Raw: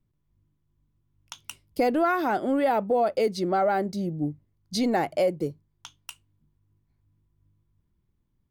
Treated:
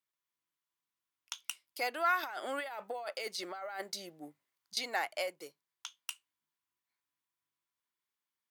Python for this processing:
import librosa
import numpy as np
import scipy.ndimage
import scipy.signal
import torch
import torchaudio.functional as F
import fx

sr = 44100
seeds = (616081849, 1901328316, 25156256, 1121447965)

y = scipy.signal.sosfilt(scipy.signal.butter(2, 1300.0, 'highpass', fs=sr, output='sos'), x)
y = fx.over_compress(y, sr, threshold_db=-40.0, ratio=-1.0, at=(2.23, 4.77))